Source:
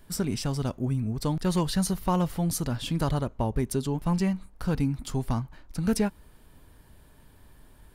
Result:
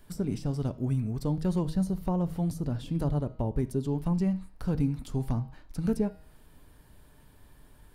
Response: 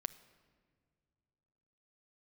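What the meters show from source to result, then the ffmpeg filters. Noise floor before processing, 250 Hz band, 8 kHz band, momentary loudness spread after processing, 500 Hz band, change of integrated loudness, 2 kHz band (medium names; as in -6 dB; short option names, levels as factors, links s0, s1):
-55 dBFS, -1.5 dB, -14.5 dB, 5 LU, -2.5 dB, -2.0 dB, -11.0 dB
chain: -filter_complex "[0:a]bandreject=f=158.4:t=h:w=4,bandreject=f=316.8:t=h:w=4,bandreject=f=475.2:t=h:w=4,bandreject=f=633.6:t=h:w=4,bandreject=f=792:t=h:w=4,bandreject=f=950.4:t=h:w=4,bandreject=f=1108.8:t=h:w=4,bandreject=f=1267.2:t=h:w=4,bandreject=f=1425.6:t=h:w=4,bandreject=f=1584:t=h:w=4,bandreject=f=1742.4:t=h:w=4,bandreject=f=1900.8:t=h:w=4,bandreject=f=2059.2:t=h:w=4,bandreject=f=2217.6:t=h:w=4,bandreject=f=2376:t=h:w=4,bandreject=f=2534.4:t=h:w=4,bandreject=f=2692.8:t=h:w=4,bandreject=f=2851.2:t=h:w=4,bandreject=f=3009.6:t=h:w=4,bandreject=f=3168:t=h:w=4,bandreject=f=3326.4:t=h:w=4,bandreject=f=3484.8:t=h:w=4,bandreject=f=3643.2:t=h:w=4,bandreject=f=3801.6:t=h:w=4,bandreject=f=3960:t=h:w=4,bandreject=f=4118.4:t=h:w=4,bandreject=f=4276.8:t=h:w=4,bandreject=f=4435.2:t=h:w=4,bandreject=f=4593.6:t=h:w=4,bandreject=f=4752:t=h:w=4,bandreject=f=4910.4:t=h:w=4,bandreject=f=5068.8:t=h:w=4,bandreject=f=5227.2:t=h:w=4,bandreject=f=5385.6:t=h:w=4,acrossover=split=740[s0][s1];[s1]acompressor=threshold=0.00501:ratio=10[s2];[s0][s2]amix=inputs=2:normalize=0[s3];[1:a]atrim=start_sample=2205,afade=t=out:st=0.14:d=0.01,atrim=end_sample=6615[s4];[s3][s4]afir=irnorm=-1:irlink=0"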